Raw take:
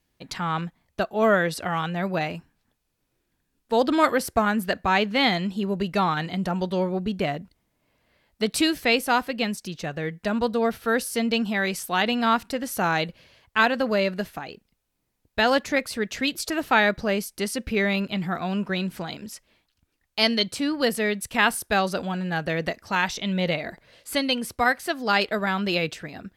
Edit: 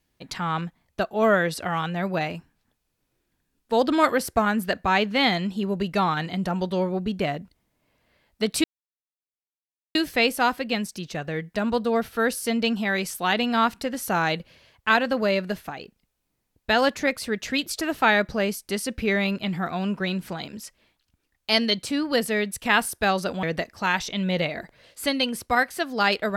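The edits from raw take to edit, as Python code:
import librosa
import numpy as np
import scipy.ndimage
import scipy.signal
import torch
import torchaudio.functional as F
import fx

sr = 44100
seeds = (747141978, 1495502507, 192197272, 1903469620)

y = fx.edit(x, sr, fx.insert_silence(at_s=8.64, length_s=1.31),
    fx.cut(start_s=22.12, length_s=0.4), tone=tone)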